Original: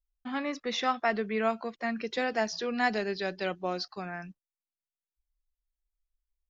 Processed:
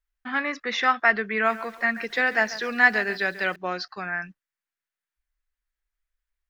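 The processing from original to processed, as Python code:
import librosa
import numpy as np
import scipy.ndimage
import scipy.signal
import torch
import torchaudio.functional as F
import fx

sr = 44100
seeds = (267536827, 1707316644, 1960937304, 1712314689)

y = fx.peak_eq(x, sr, hz=1700.0, db=14.0, octaves=1.2)
y = fx.echo_crushed(y, sr, ms=139, feedback_pct=35, bits=7, wet_db=-15, at=(1.32, 3.56))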